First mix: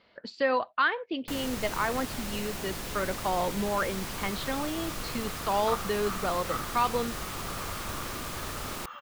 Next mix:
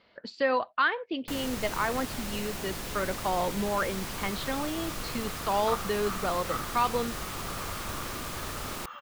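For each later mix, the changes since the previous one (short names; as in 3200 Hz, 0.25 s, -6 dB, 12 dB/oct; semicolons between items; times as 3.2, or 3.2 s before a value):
none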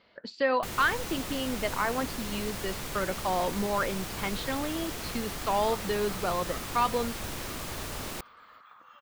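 first sound: entry -0.65 s; second sound -10.0 dB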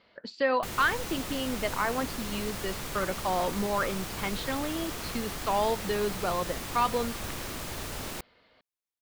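second sound: entry -2.70 s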